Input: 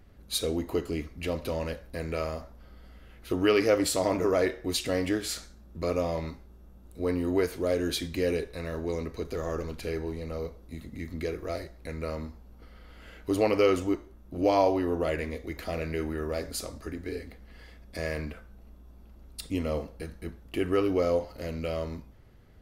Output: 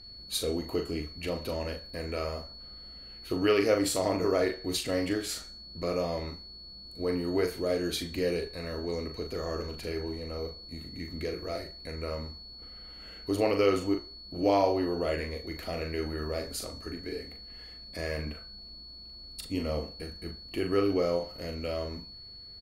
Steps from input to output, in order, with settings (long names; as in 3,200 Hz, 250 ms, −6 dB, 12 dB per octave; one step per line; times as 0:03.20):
steady tone 4,400 Hz −46 dBFS
double-tracking delay 40 ms −6.5 dB
level −2.5 dB